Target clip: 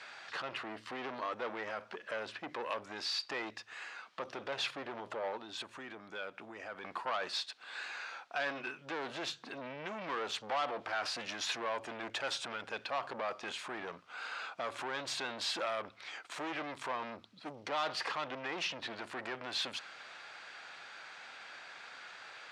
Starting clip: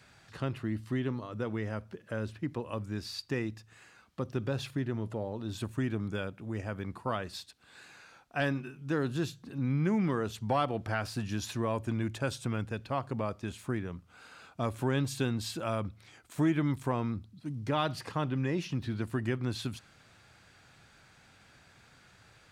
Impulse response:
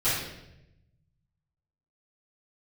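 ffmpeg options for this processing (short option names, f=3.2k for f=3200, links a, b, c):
-filter_complex "[0:a]alimiter=level_in=4.5dB:limit=-24dB:level=0:latency=1:release=16,volume=-4.5dB,asplit=3[a][b][c];[a]afade=t=out:st=5.36:d=0.02[d];[b]acompressor=threshold=-42dB:ratio=6,afade=t=in:st=5.36:d=0.02,afade=t=out:st=6.83:d=0.02[e];[c]afade=t=in:st=6.83:d=0.02[f];[d][e][f]amix=inputs=3:normalize=0,asoftclip=type=tanh:threshold=-39dB,highpass=670,lowpass=4.4k,volume=12dB"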